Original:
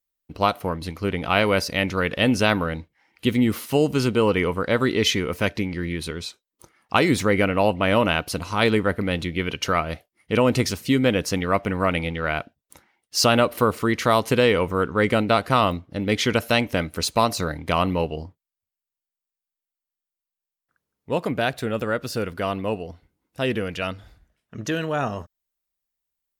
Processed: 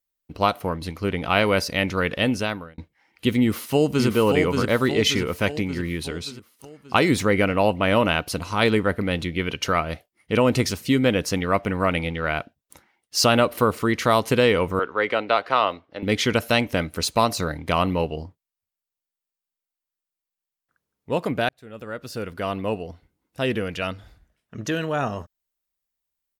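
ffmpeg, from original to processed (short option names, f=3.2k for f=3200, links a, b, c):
-filter_complex "[0:a]asplit=2[a][b];[b]afade=t=in:st=3.41:d=0.01,afade=t=out:st=4.07:d=0.01,aecho=0:1:580|1160|1740|2320|2900|3480|4060:0.595662|0.327614|0.180188|0.0991033|0.0545068|0.0299787|0.0164883[c];[a][c]amix=inputs=2:normalize=0,asettb=1/sr,asplit=3[d][e][f];[d]atrim=end=14.794[g];[e]atrim=start=14.79:end=16.03,asetpts=PTS-STARTPTS,afade=t=in:d=0.004:c=qsin,afade=t=out:st=1.236:d=0.004:c=qsin,acrossover=split=370 4900:gain=0.112 1 0.0794[h][i][j];[h][i][j]amix=inputs=3:normalize=0[k];[f]atrim=start=16.026[l];[g][k]acrossfade=d=0.004:c1=hsin:c2=qsin[m];[m][l]acrossfade=d=0.004:c1=qsin:c2=hsin,asplit=3[n][o][p];[n]atrim=end=2.78,asetpts=PTS-STARTPTS,afade=t=out:st=2.11:d=0.67[q];[o]atrim=start=2.78:end=21.49,asetpts=PTS-STARTPTS,afade=t=in:d=0.004:c=hsin,afade=t=out:st=18.706:d=0.004:c=hsin[r];[p]atrim=start=21.49,asetpts=PTS-STARTPTS,afade=t=in:d=1.16[s];[q][r][s]concat=n=3:v=0:a=1"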